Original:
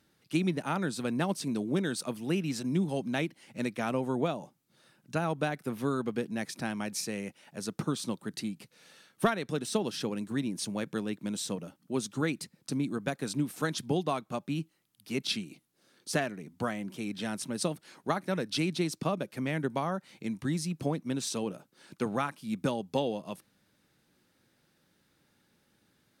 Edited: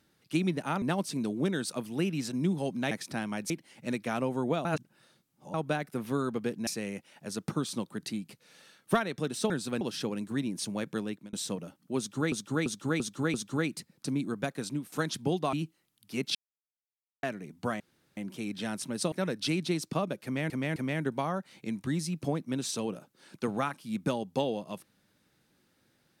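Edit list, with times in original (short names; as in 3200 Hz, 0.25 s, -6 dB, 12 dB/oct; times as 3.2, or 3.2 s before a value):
0.82–1.13 move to 9.81
4.37–5.26 reverse
6.39–6.98 move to 3.22
10.96–11.33 fade out equal-power
11.98–12.32 loop, 5 plays
13.02–13.56 fade out equal-power, to -9 dB
14.17–14.5 cut
15.32–16.2 mute
16.77 insert room tone 0.37 s
17.72–18.22 cut
19.34–19.6 loop, 3 plays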